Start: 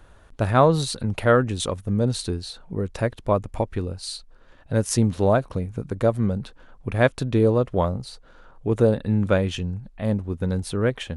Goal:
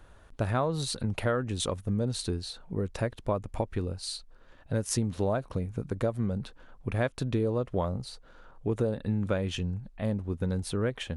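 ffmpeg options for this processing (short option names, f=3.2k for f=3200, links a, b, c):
-af "acompressor=threshold=-21dB:ratio=5,volume=-3.5dB"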